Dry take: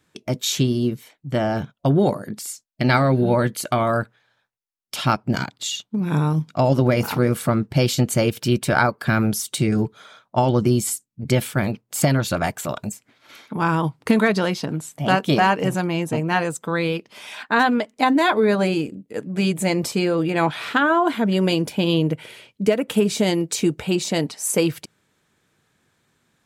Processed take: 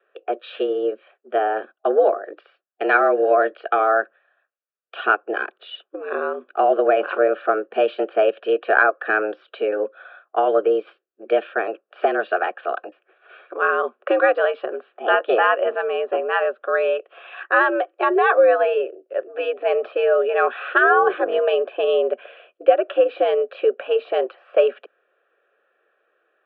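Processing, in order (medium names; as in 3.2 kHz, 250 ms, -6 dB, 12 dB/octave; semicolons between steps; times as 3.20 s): 20.83–21.38 s: octave divider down 2 oct, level +4 dB; mistuned SSB +96 Hz 230–2400 Hz; static phaser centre 1.4 kHz, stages 8; trim +5.5 dB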